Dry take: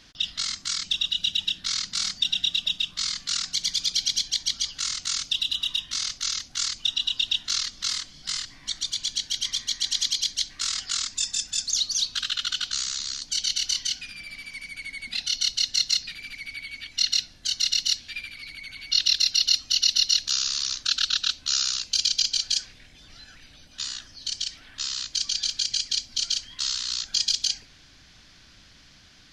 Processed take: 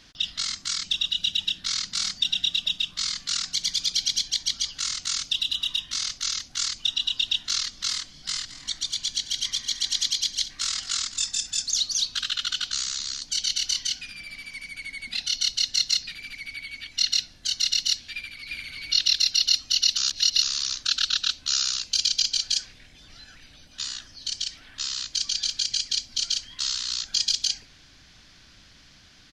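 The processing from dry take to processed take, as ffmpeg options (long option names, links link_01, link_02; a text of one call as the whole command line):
ffmpeg -i in.wav -filter_complex "[0:a]asettb=1/sr,asplit=3[link_01][link_02][link_03];[link_01]atrim=end=8.144[link_04];[link_02]atrim=start=8.14:end=11.96,asetpts=PTS-STARTPTS,afade=type=in:duration=0.004:curve=qsin,afade=type=out:start_time=3.816:duration=0.004:curve=qsin,aecho=1:1:216:0.188,atrim=end_sample=168462[link_05];[link_03]atrim=start=11.956[link_06];[link_04][link_05]acrossfade=duration=0.004:curve1=hsin:curve2=qsin[link_07];[link_07][link_06]acrossfade=duration=0.004:curve1=qsin:curve2=hsin,asplit=2[link_08][link_09];[link_09]afade=type=in:start_time=18.14:duration=0.01,afade=type=out:start_time=18.57:duration=0.01,aecho=0:1:350|700|1050:0.944061|0.141609|0.0212414[link_10];[link_08][link_10]amix=inputs=2:normalize=0,asplit=3[link_11][link_12][link_13];[link_11]atrim=end=19.972[link_14];[link_12]atrim=start=19.968:end=20.422,asetpts=PTS-STARTPTS,areverse[link_15];[link_13]atrim=start=20.418[link_16];[link_14][link_15]acrossfade=duration=0.004:curve1=hsin:curve2=hsin[link_17];[link_17][link_16]acrossfade=duration=0.004:curve1=hsin:curve2=hsin" out.wav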